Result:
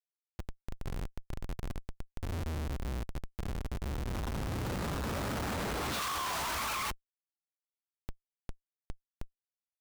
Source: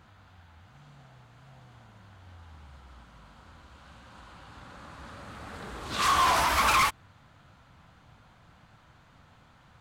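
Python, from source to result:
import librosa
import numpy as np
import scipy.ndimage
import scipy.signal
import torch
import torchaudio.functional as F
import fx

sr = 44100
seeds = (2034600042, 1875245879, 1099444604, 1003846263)

y = fx.hum_notches(x, sr, base_hz=50, count=2)
y = fx.schmitt(y, sr, flips_db=-45.5)
y = y * librosa.db_to_amplitude(-1.0)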